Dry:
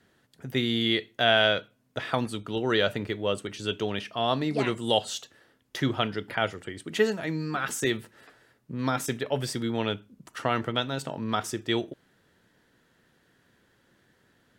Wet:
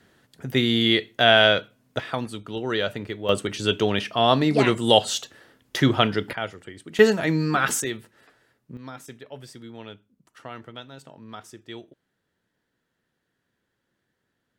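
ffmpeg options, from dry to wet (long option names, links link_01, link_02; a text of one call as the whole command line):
ffmpeg -i in.wav -af "asetnsamples=nb_out_samples=441:pad=0,asendcmd='2 volume volume -1dB;3.29 volume volume 7.5dB;6.33 volume volume -3dB;6.99 volume volume 8dB;7.82 volume volume -3dB;8.77 volume volume -12dB',volume=5.5dB" out.wav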